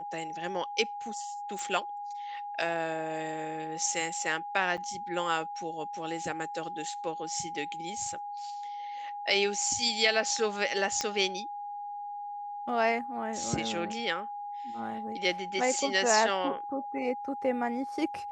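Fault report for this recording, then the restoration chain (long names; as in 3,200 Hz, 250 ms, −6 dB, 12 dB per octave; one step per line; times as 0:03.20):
whistle 820 Hz −36 dBFS
0:01.59: click
0:04.77–0:04.78: drop-out 7.3 ms
0:11.01: click −15 dBFS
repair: click removal
notch filter 820 Hz, Q 30
repair the gap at 0:04.77, 7.3 ms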